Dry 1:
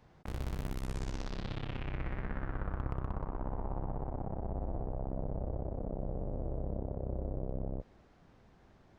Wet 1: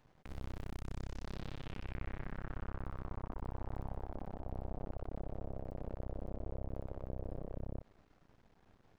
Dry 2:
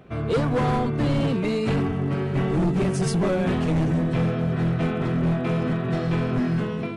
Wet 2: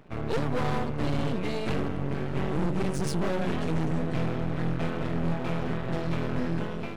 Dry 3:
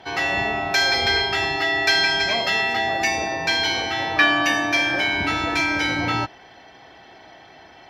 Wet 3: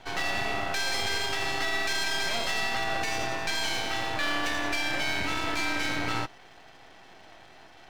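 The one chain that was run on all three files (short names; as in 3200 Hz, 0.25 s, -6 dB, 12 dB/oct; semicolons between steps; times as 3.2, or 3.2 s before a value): half-wave rectifier; limiter -15 dBFS; gain -1.5 dB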